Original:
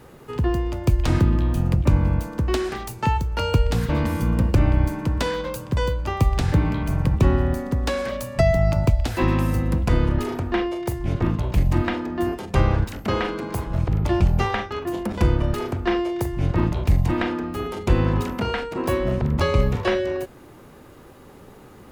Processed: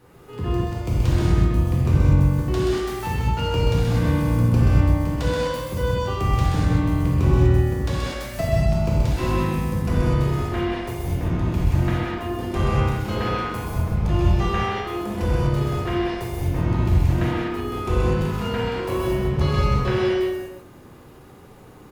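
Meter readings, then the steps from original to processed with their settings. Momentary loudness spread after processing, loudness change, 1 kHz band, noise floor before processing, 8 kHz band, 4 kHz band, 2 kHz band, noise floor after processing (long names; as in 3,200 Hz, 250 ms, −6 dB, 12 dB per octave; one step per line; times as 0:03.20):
8 LU, +0.5 dB, 0.0 dB, −46 dBFS, −0.5 dB, +0.5 dB, −1.0 dB, −45 dBFS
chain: on a send: single-tap delay 129 ms −5 dB
on the sum: reverb whose tail is shaped and stops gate 270 ms flat, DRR −6.5 dB
level −9 dB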